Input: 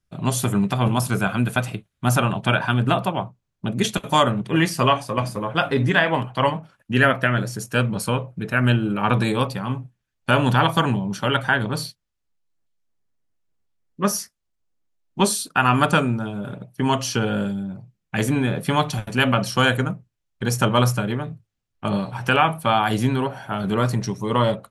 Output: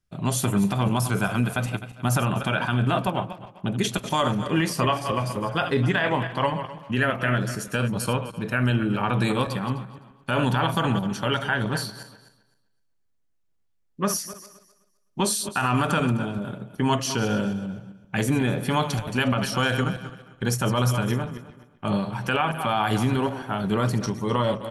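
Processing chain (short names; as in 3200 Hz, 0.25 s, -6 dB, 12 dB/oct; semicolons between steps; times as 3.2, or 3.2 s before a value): regenerating reverse delay 0.128 s, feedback 44%, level -12 dB; limiter -11 dBFS, peak gain reduction 8 dB; speakerphone echo 0.4 s, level -23 dB; gain -1.5 dB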